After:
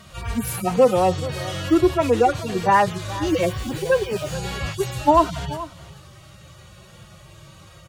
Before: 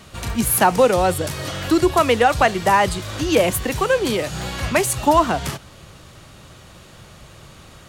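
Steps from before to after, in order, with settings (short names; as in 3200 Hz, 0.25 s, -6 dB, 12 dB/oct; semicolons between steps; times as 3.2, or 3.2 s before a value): median-filter separation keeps harmonic; echo 0.43 s -16 dB; 3.27–4.34 requantised 8-bit, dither none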